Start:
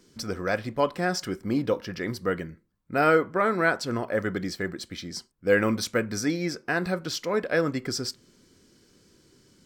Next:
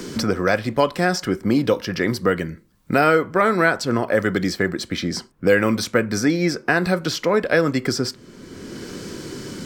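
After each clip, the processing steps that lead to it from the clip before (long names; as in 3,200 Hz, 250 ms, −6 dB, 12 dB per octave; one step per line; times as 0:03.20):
multiband upward and downward compressor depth 70%
level +7 dB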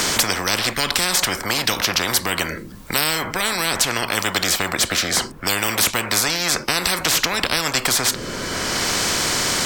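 parametric band 250 Hz +5 dB 1.8 octaves
every bin compressed towards the loudest bin 10 to 1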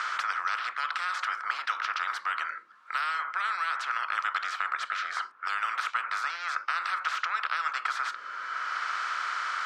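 four-pole ladder band-pass 1,400 Hz, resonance 75%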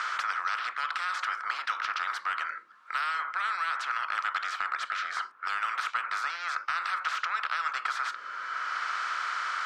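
soft clipping −17 dBFS, distortion −24 dB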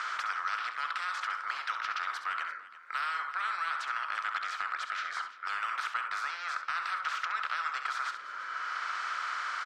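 multi-tap delay 67/342 ms −9.5/−16.5 dB
level −3.5 dB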